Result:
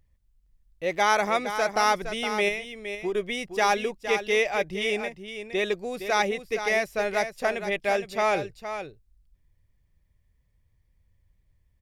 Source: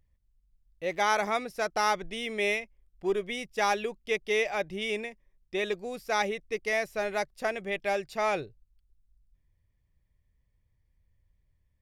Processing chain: 2.48–3.15 s: compression, threshold -30 dBFS, peak gain reduction 7.5 dB; on a send: delay 464 ms -9.5 dB; on the sum: trim +4 dB

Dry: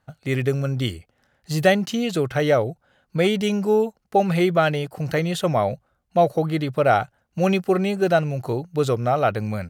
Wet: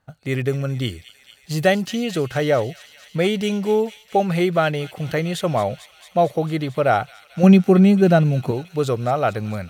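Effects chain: 7.43–8.51 s: peaking EQ 200 Hz +12 dB 1.3 oct; feedback echo behind a high-pass 224 ms, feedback 79%, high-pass 2.8 kHz, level -11.5 dB

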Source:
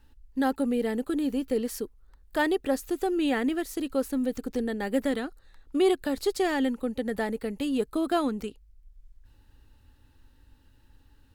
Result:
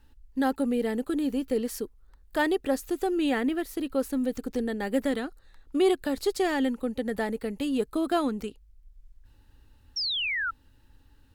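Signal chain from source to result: 3.41–4.00 s: peaking EQ 6.9 kHz -6.5 dB 0.99 oct; 9.96–10.51 s: painted sound fall 1.3–5.7 kHz -29 dBFS

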